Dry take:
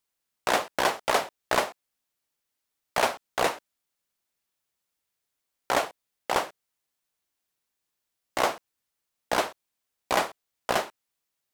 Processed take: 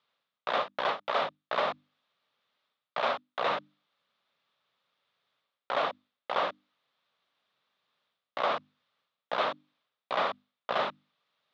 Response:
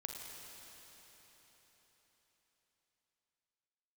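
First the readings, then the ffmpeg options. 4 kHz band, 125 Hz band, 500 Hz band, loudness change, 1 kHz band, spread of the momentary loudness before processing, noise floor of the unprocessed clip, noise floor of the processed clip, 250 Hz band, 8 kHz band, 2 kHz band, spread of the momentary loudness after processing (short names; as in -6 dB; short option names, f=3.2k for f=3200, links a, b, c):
-4.0 dB, -8.0 dB, -3.5 dB, -4.0 dB, -3.0 dB, 11 LU, -83 dBFS, under -85 dBFS, -8.5 dB, under -25 dB, -5.0 dB, 9 LU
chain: -af "bandreject=f=50:t=h:w=6,bandreject=f=100:t=h:w=6,bandreject=f=150:t=h:w=6,bandreject=f=200:t=h:w=6,bandreject=f=250:t=h:w=6,bandreject=f=300:t=h:w=6,areverse,acompressor=threshold=-39dB:ratio=5,areverse,highpass=f=120:w=0.5412,highpass=f=120:w=1.3066,equalizer=f=330:t=q:w=4:g=-7,equalizer=f=570:t=q:w=4:g=5,equalizer=f=1.2k:t=q:w=4:g=8,equalizer=f=3.6k:t=q:w=4:g=7,lowpass=f=3.9k:w=0.5412,lowpass=f=3.9k:w=1.3066,volume=8dB"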